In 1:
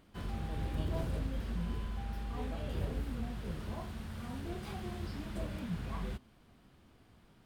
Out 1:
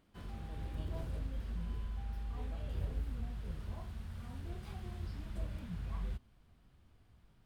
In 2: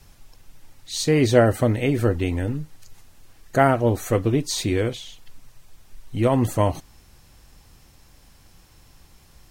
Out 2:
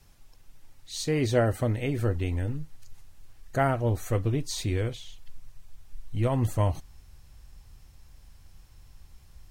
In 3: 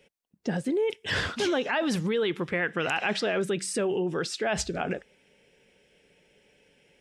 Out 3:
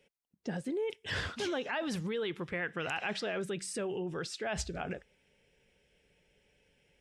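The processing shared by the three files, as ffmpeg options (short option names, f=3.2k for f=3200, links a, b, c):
-af "asubboost=boost=3:cutoff=130,volume=-7.5dB"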